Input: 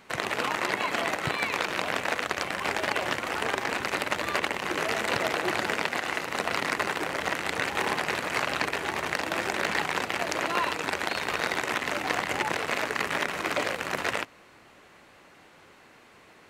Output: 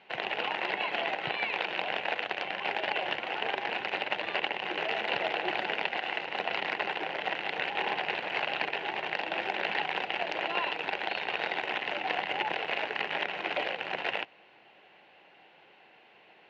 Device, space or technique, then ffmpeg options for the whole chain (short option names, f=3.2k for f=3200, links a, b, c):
kitchen radio: -af "highpass=200,equalizer=f=260:t=q:w=4:g=-8,equalizer=f=780:t=q:w=4:g=7,equalizer=f=1.2k:t=q:w=4:g=-9,equalizer=f=2.8k:t=q:w=4:g=8,lowpass=f=3.8k:w=0.5412,lowpass=f=3.8k:w=1.3066,volume=-4.5dB"